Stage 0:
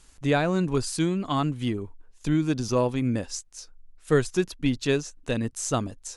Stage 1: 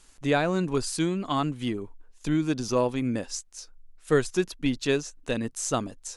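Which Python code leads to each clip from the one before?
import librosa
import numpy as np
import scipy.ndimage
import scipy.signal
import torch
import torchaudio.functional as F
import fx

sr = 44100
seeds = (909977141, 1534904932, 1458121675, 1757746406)

y = fx.peak_eq(x, sr, hz=71.0, db=-10.0, octaves=1.7)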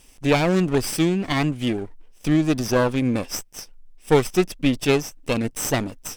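y = fx.lower_of_two(x, sr, delay_ms=0.37)
y = F.gain(torch.from_numpy(y), 6.5).numpy()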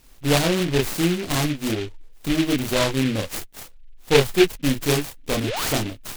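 y = fx.chorus_voices(x, sr, voices=6, hz=0.53, base_ms=29, depth_ms=1.8, mix_pct=45)
y = fx.spec_paint(y, sr, seeds[0], shape='rise', start_s=5.42, length_s=0.31, low_hz=230.0, high_hz=3200.0, level_db=-30.0)
y = fx.noise_mod_delay(y, sr, seeds[1], noise_hz=2500.0, depth_ms=0.14)
y = F.gain(torch.from_numpy(y), 2.5).numpy()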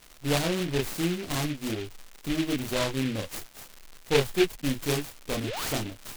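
y = fx.dmg_crackle(x, sr, seeds[2], per_s=270.0, level_db=-29.0)
y = F.gain(torch.from_numpy(y), -7.0).numpy()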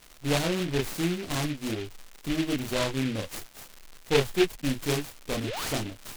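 y = fx.doppler_dist(x, sr, depth_ms=0.11)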